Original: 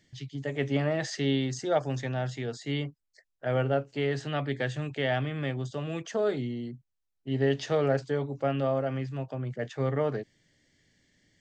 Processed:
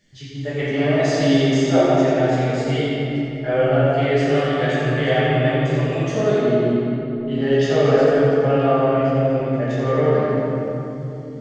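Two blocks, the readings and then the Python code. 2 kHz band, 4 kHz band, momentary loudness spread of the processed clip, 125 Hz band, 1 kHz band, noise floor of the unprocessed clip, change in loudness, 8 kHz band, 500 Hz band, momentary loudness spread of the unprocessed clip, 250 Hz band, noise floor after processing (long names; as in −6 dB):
+10.5 dB, +9.5 dB, 8 LU, +10.5 dB, +12.5 dB, −80 dBFS, +12.0 dB, can't be measured, +12.5 dB, 8 LU, +13.0 dB, −31 dBFS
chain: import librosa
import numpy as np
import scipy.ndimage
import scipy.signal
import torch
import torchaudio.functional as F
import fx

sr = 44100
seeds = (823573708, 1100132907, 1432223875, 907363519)

p1 = fx.reverse_delay(x, sr, ms=204, wet_db=-11.0)
p2 = p1 + fx.echo_split(p1, sr, split_hz=440.0, low_ms=184, high_ms=87, feedback_pct=52, wet_db=-7.0, dry=0)
y = fx.room_shoebox(p2, sr, seeds[0], volume_m3=150.0, walls='hard', distance_m=1.3)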